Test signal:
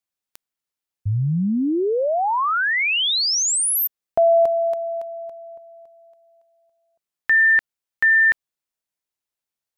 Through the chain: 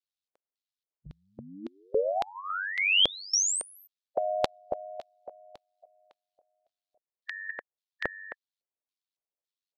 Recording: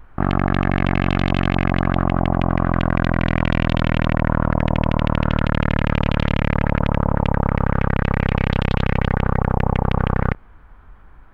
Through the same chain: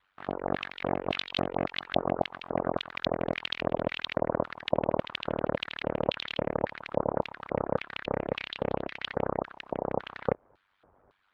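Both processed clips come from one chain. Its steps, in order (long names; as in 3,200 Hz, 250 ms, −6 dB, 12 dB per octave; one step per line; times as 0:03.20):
ring modulation 48 Hz
auto-filter band-pass square 1.8 Hz 540–3,900 Hz
harmonic and percussive parts rebalanced harmonic −16 dB
level +6.5 dB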